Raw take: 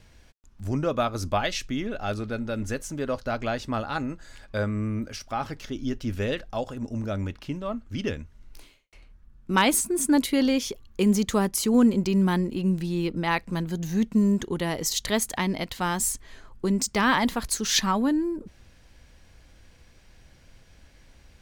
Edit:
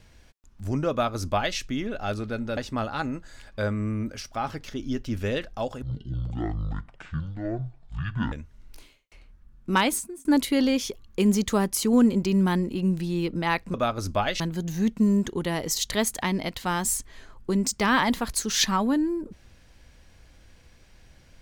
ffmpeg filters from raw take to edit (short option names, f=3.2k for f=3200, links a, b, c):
-filter_complex "[0:a]asplit=7[a][b][c][d][e][f][g];[a]atrim=end=2.572[h];[b]atrim=start=3.528:end=6.784[i];[c]atrim=start=6.78:end=8.13,asetpts=PTS-STARTPTS,asetrate=23814,aresample=44100[j];[d]atrim=start=8.126:end=10.06,asetpts=PTS-STARTPTS,afade=t=out:st=1.414:d=0.52[k];[e]atrim=start=10.06:end=13.552,asetpts=PTS-STARTPTS,afade=t=in:d=0.004:c=hsin[l];[f]atrim=start=0.908:end=1.572[m];[g]atrim=start=13.548[n];[h][i]acrossfade=d=0.004:c1=hsin:c2=hsin[o];[o][j]acrossfade=d=0.004:c1=hsin:c2=hsin[p];[k][l]concat=n=2:v=0:a=1[q];[p][q]acrossfade=d=0.004:c1=hsin:c2=hsin[r];[r][m]acrossfade=d=0.004:c1=hsin:c2=hsin[s];[s][n]acrossfade=d=0.004:c1=hsin:c2=hsin"